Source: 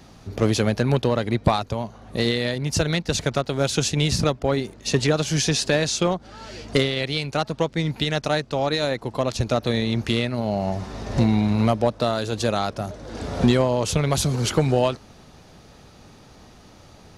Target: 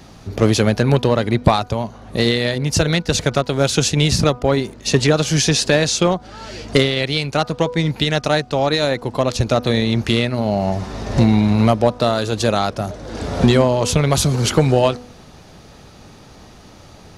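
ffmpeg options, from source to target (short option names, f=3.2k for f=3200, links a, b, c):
-af "bandreject=f=245.8:t=h:w=4,bandreject=f=491.6:t=h:w=4,bandreject=f=737.4:t=h:w=4,bandreject=f=983.2:t=h:w=4,bandreject=f=1.229k:t=h:w=4,bandreject=f=1.4748k:t=h:w=4,volume=5.5dB"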